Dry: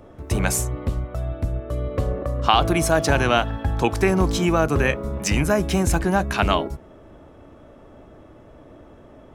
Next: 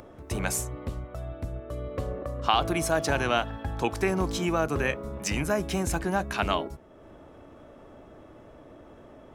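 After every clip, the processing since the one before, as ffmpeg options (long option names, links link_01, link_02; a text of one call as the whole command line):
ffmpeg -i in.wav -af "lowshelf=frequency=180:gain=-5,acompressor=mode=upward:threshold=-36dB:ratio=2.5,volume=-6dB" out.wav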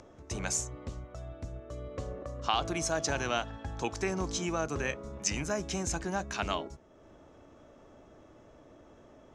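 ffmpeg -i in.wav -af "lowpass=frequency=6500:width_type=q:width=3.3,volume=-6.5dB" out.wav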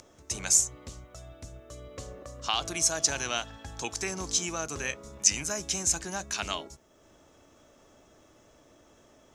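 ffmpeg -i in.wav -af "crystalizer=i=5.5:c=0,volume=-4.5dB" out.wav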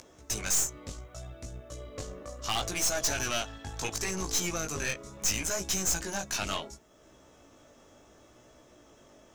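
ffmpeg -i in.wav -af "flanger=delay=15.5:depth=5.6:speed=0.7,aeval=exprs='(tanh(39.8*val(0)+0.65)-tanh(0.65))/39.8':channel_layout=same,volume=8dB" out.wav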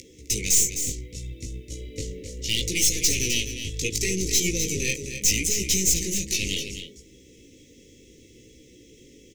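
ffmpeg -i in.wav -af "asuperstop=centerf=1000:order=20:qfactor=0.69,aecho=1:1:258:0.355,volume=7.5dB" out.wav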